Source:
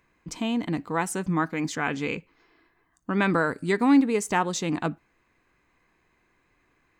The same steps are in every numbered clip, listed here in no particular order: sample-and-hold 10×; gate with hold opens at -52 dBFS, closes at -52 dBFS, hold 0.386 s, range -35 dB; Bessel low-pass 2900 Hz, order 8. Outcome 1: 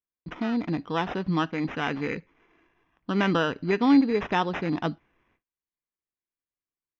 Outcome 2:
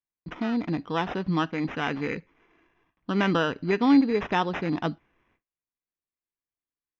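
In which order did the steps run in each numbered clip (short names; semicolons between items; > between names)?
gate with hold > sample-and-hold > Bessel low-pass; sample-and-hold > Bessel low-pass > gate with hold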